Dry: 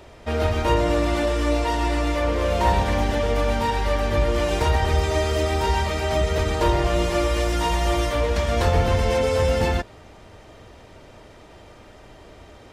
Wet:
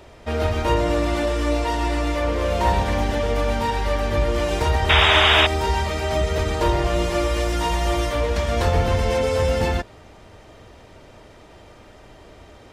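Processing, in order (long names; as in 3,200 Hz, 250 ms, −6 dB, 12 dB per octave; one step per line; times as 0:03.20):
sound drawn into the spectrogram noise, 0:04.89–0:05.47, 570–3,800 Hz −16 dBFS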